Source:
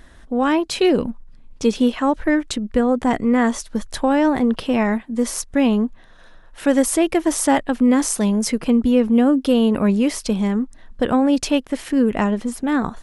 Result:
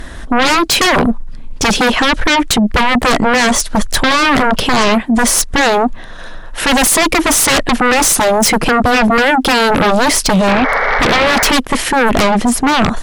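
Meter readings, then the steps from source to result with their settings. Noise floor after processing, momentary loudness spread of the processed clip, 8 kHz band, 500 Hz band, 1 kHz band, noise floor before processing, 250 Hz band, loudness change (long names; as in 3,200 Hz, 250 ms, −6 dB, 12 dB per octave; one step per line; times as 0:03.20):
−27 dBFS, 4 LU, +13.0 dB, +5.5 dB, +12.5 dB, −45 dBFS, +2.0 dB, +7.5 dB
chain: sound drawn into the spectrogram noise, 0:10.47–0:11.51, 400–2,300 Hz −31 dBFS
sine wavefolder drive 18 dB, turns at −3.5 dBFS
level −4 dB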